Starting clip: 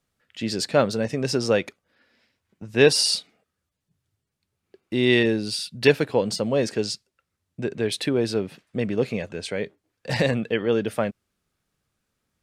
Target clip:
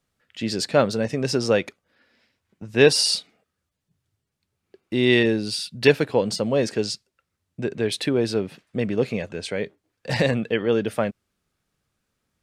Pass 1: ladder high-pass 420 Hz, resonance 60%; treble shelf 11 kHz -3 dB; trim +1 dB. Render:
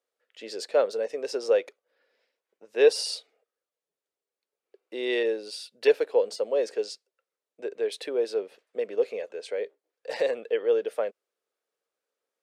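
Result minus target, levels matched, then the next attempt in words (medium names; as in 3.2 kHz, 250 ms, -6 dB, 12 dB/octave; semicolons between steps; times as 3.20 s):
500 Hz band +2.5 dB
treble shelf 11 kHz -3 dB; trim +1 dB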